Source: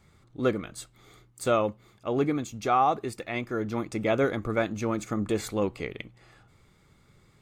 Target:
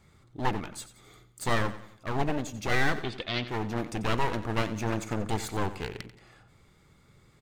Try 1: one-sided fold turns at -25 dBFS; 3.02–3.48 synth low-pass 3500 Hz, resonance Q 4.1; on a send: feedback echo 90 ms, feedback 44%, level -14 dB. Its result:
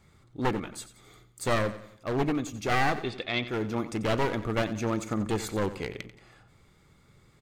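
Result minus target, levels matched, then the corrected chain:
one-sided fold: distortion -8 dB
one-sided fold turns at -32.5 dBFS; 3.02–3.48 synth low-pass 3500 Hz, resonance Q 4.1; on a send: feedback echo 90 ms, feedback 44%, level -14 dB

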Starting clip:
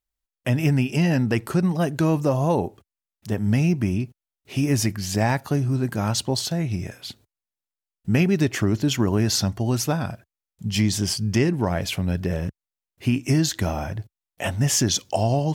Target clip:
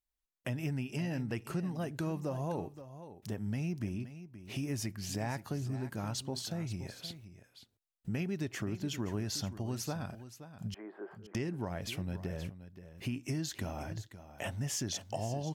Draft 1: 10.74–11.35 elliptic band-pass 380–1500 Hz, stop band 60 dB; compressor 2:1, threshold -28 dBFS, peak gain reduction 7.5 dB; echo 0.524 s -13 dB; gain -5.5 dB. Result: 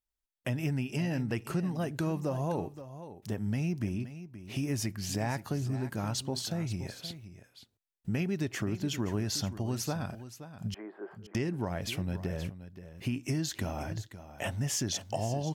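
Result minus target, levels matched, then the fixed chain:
compressor: peak gain reduction -4 dB
10.74–11.35 elliptic band-pass 380–1500 Hz, stop band 60 dB; compressor 2:1, threshold -36 dBFS, peak gain reduction 11.5 dB; echo 0.524 s -13 dB; gain -5.5 dB

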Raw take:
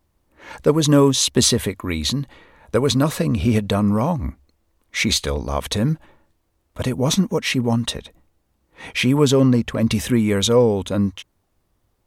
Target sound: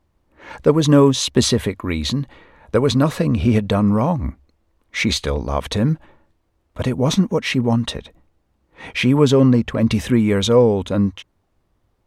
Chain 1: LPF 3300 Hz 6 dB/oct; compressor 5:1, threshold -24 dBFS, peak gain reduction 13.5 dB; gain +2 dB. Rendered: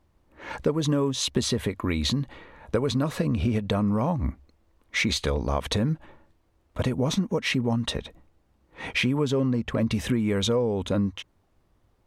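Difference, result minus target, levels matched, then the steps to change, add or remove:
compressor: peak gain reduction +13.5 dB
remove: compressor 5:1, threshold -24 dBFS, peak gain reduction 13.5 dB

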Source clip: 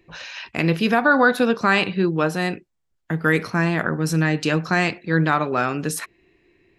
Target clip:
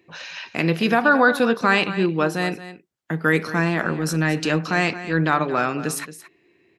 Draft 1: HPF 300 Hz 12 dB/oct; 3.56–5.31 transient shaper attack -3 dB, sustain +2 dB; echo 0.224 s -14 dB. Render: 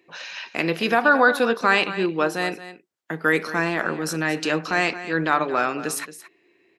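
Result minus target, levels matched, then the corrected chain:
125 Hz band -8.0 dB
HPF 140 Hz 12 dB/oct; 3.56–5.31 transient shaper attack -3 dB, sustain +2 dB; echo 0.224 s -14 dB

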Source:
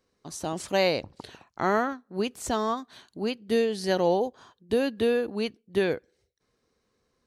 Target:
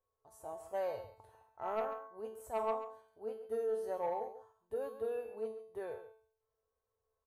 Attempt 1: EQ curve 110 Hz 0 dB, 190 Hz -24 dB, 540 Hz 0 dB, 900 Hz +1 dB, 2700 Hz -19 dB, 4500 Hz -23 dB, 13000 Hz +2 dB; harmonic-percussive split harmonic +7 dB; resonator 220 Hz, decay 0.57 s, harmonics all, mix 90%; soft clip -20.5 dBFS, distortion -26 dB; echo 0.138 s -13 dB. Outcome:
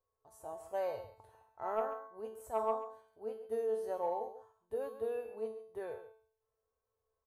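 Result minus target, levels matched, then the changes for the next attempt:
soft clip: distortion -9 dB
change: soft clip -27 dBFS, distortion -17 dB

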